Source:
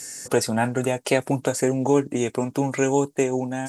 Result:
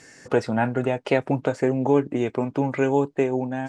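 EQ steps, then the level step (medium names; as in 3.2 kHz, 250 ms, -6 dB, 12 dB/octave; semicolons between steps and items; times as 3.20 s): low-pass 2.7 kHz 12 dB/octave; 0.0 dB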